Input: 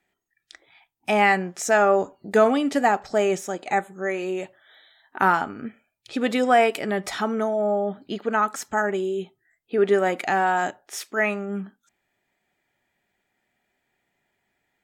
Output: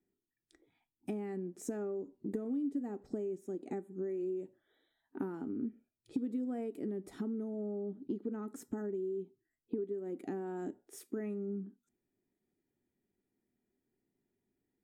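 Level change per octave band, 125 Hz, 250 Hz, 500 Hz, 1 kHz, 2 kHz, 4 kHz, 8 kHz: −11.0 dB, −9.5 dB, −17.0 dB, −31.0 dB, −34.0 dB, below −30 dB, −20.5 dB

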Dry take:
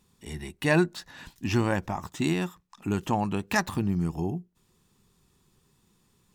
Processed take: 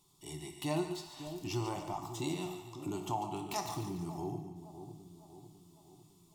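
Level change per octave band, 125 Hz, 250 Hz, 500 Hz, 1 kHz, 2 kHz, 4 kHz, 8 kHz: −11.0, −11.0, −9.5, −6.5, −18.5, −6.0, −4.5 decibels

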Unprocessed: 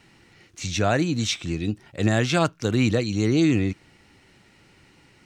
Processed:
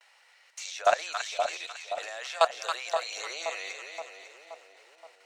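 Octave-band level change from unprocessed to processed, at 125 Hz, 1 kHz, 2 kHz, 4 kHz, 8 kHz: below −40 dB, +2.0 dB, −4.5 dB, −5.0 dB, −5.5 dB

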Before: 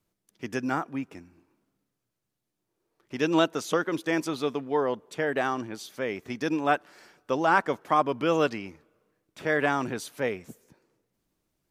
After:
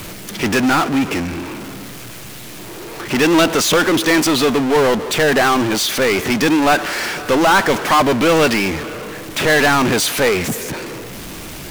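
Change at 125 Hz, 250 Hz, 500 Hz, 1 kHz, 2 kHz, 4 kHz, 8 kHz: +14.0, +13.5, +12.0, +11.0, +14.5, +19.5, +22.5 decibels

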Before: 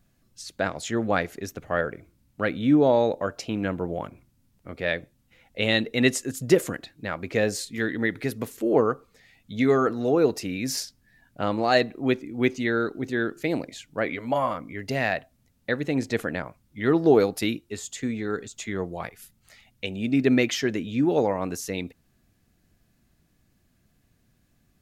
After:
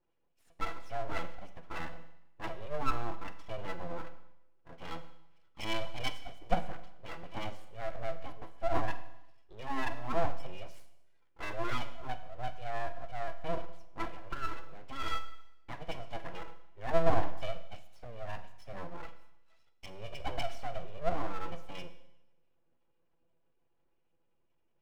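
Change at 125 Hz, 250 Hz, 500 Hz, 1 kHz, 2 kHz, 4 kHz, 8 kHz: −11.5, −21.5, −15.0, −7.0, −14.5, −12.0, −21.5 decibels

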